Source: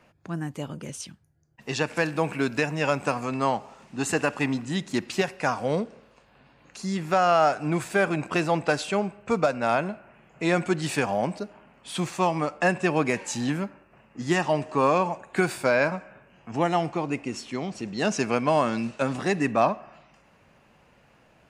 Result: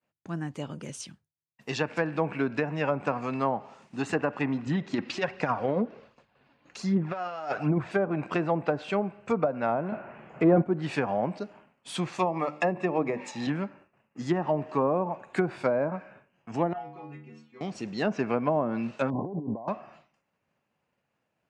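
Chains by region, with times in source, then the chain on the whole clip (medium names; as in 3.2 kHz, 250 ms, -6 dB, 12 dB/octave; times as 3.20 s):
4.66–7.91 s: low-pass 6.1 kHz + compressor with a negative ratio -25 dBFS, ratio -0.5 + phaser 1.3 Hz, delay 4.2 ms, feedback 38%
9.92–10.62 s: block-companded coder 7-bit + tilt EQ -3 dB/octave + overdrive pedal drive 18 dB, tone 2.5 kHz, clips at -7.5 dBFS
12.19–13.47 s: treble shelf 2.3 kHz +10.5 dB + hum notches 50/100/150/200/250/300/350 Hz + comb of notches 1.5 kHz
16.73–17.61 s: low-pass 2.7 kHz + inharmonic resonator 72 Hz, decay 0.82 s, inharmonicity 0.008
19.10–19.68 s: brick-wall FIR low-pass 1.1 kHz + compressor with a negative ratio -32 dBFS
whole clip: high-pass 91 Hz; low-pass that closes with the level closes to 730 Hz, closed at -18 dBFS; expander -47 dBFS; trim -2 dB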